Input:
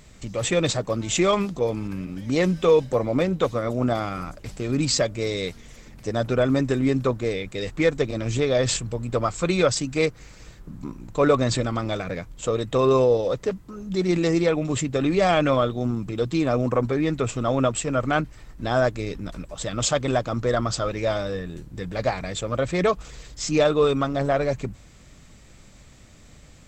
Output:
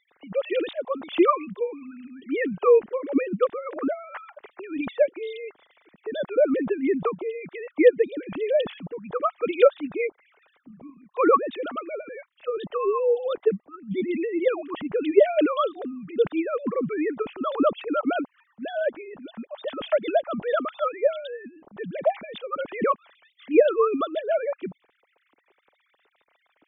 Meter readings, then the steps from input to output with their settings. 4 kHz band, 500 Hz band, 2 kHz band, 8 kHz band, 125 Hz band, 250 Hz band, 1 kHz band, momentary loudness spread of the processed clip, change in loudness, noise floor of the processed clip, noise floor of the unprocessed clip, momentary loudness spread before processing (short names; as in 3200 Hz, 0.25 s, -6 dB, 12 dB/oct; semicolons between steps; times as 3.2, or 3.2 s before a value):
-10.5 dB, 0.0 dB, -4.5 dB, under -40 dB, -19.0 dB, -3.5 dB, -1.0 dB, 16 LU, -1.5 dB, -71 dBFS, -49 dBFS, 12 LU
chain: sine-wave speech; harmonic-percussive split harmonic -9 dB; gain +3 dB